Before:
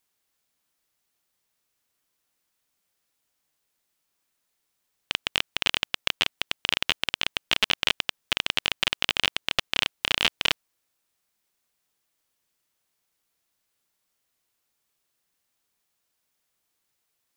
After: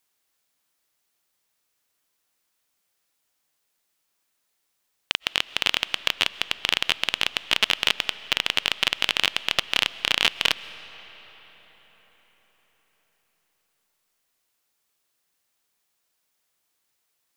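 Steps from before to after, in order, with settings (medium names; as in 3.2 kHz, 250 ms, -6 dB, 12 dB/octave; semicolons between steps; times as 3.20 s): bass shelf 260 Hz -5.5 dB; on a send: reverberation RT60 5.2 s, pre-delay 90 ms, DRR 16 dB; on the sum: trim +2.5 dB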